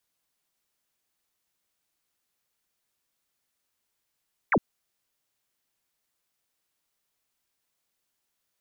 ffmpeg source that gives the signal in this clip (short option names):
-f lavfi -i "aevalsrc='0.126*clip(t/0.002,0,1)*clip((0.06-t)/0.002,0,1)*sin(2*PI*2500*0.06/log(150/2500)*(exp(log(150/2500)*t/0.06)-1))':d=0.06:s=44100"